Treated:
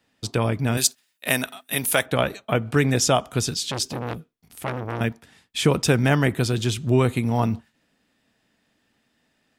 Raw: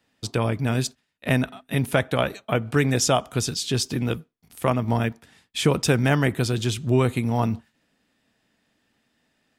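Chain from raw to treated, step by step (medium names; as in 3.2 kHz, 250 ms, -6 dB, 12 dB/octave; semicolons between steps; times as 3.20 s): 0.77–2.06 s: RIAA curve recording; 3.62–5.01 s: transformer saturation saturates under 1.9 kHz; trim +1 dB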